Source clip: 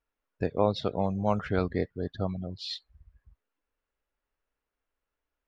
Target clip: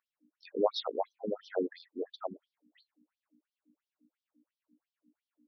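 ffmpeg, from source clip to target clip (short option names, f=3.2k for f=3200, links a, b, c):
-af "aeval=exprs='val(0)+0.002*(sin(2*PI*60*n/s)+sin(2*PI*2*60*n/s)/2+sin(2*PI*3*60*n/s)/3+sin(2*PI*4*60*n/s)/4+sin(2*PI*5*60*n/s)/5)':c=same,afftfilt=real='re*between(b*sr/1024,300*pow(4400/300,0.5+0.5*sin(2*PI*2.9*pts/sr))/1.41,300*pow(4400/300,0.5+0.5*sin(2*PI*2.9*pts/sr))*1.41)':imag='im*between(b*sr/1024,300*pow(4400/300,0.5+0.5*sin(2*PI*2.9*pts/sr))/1.41,300*pow(4400/300,0.5+0.5*sin(2*PI*2.9*pts/sr))*1.41)':win_size=1024:overlap=0.75,volume=1.5dB"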